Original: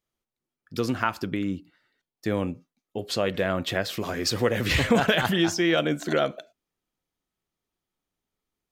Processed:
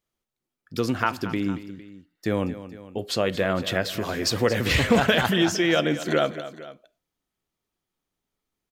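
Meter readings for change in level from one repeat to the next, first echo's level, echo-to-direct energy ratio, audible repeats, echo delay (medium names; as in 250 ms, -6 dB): -4.5 dB, -14.0 dB, -12.5 dB, 2, 229 ms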